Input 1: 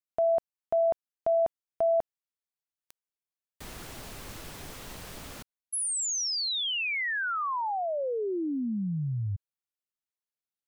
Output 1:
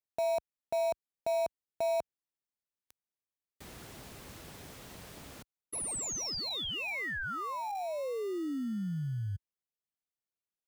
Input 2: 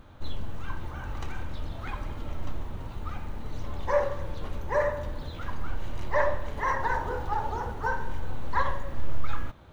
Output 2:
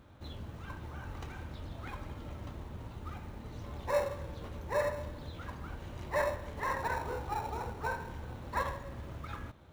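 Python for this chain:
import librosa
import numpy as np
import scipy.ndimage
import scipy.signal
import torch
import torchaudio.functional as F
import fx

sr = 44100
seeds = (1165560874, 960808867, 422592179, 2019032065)

p1 = scipy.signal.sosfilt(scipy.signal.butter(2, 56.0, 'highpass', fs=sr, output='sos'), x)
p2 = fx.sample_hold(p1, sr, seeds[0], rate_hz=1600.0, jitter_pct=0)
p3 = p1 + F.gain(torch.from_numpy(p2), -10.0).numpy()
y = F.gain(torch.from_numpy(p3), -6.5).numpy()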